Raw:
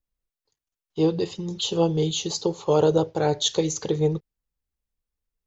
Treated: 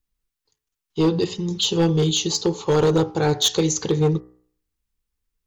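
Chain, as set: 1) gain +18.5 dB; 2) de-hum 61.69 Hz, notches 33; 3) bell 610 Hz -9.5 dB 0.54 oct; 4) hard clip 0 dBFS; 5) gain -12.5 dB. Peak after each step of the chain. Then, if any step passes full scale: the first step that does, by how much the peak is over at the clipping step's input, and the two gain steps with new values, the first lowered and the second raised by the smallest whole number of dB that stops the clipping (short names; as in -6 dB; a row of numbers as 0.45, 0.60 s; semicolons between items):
+10.0, +10.5, +9.0, 0.0, -12.5 dBFS; step 1, 9.0 dB; step 1 +9.5 dB, step 5 -3.5 dB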